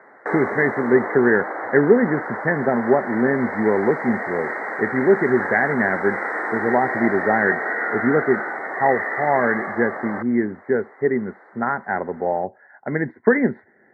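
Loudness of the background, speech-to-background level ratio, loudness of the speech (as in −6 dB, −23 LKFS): −26.5 LKFS, 5.5 dB, −21.0 LKFS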